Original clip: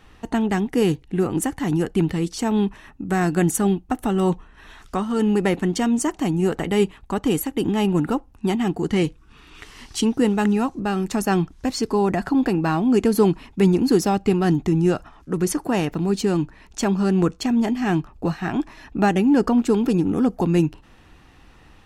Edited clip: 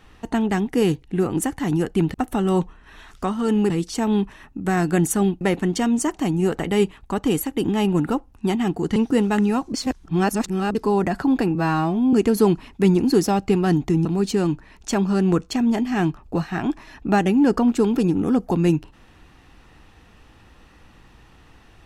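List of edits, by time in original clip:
0:03.85–0:05.41: move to 0:02.14
0:08.96–0:10.03: remove
0:10.81–0:11.82: reverse
0:12.62–0:12.91: time-stretch 2×
0:14.83–0:15.95: remove

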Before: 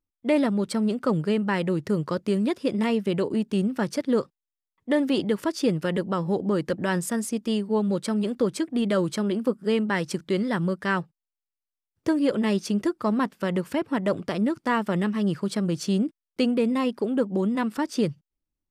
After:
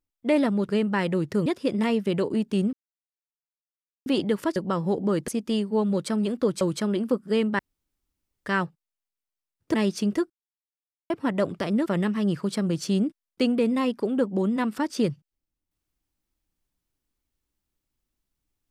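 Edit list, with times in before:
0:00.69–0:01.24: remove
0:02.01–0:02.46: remove
0:03.73–0:05.06: silence
0:05.56–0:05.98: remove
0:06.70–0:07.26: remove
0:08.59–0:08.97: remove
0:09.95–0:10.82: fill with room tone
0:12.10–0:12.42: remove
0:12.98–0:13.78: silence
0:14.54–0:14.85: remove

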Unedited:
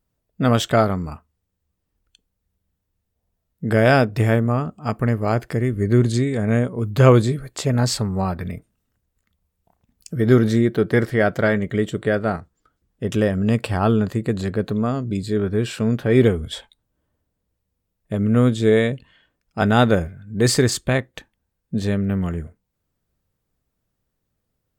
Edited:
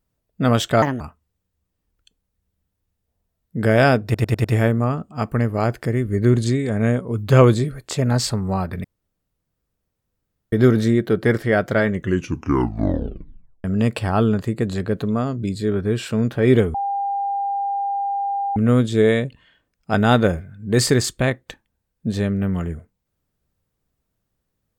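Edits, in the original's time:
0:00.82–0:01.08: play speed 142%
0:04.12: stutter 0.10 s, 5 plays
0:08.52–0:10.20: fill with room tone
0:11.58: tape stop 1.74 s
0:16.42–0:18.24: beep over 799 Hz −20 dBFS

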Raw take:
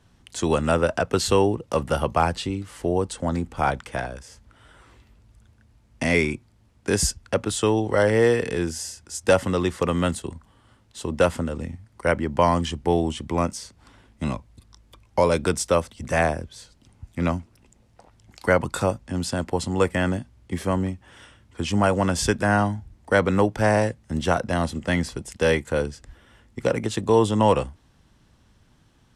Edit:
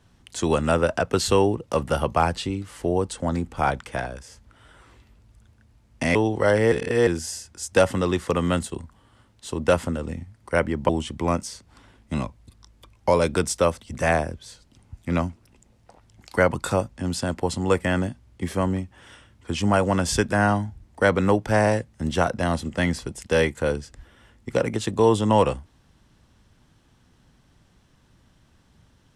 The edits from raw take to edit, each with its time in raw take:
0:06.15–0:07.67: remove
0:08.24–0:08.59: reverse
0:12.41–0:12.99: remove

